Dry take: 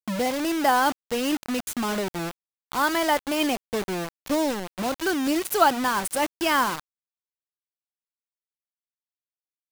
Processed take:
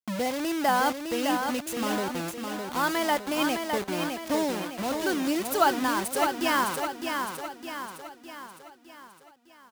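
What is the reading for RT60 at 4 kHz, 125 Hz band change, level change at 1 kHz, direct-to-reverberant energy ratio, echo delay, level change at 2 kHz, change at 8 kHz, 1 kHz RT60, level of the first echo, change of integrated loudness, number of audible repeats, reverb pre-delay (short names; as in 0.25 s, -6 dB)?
none, -2.0 dB, -2.0 dB, none, 0.609 s, -2.0 dB, -2.0 dB, none, -5.5 dB, -3.0 dB, 5, none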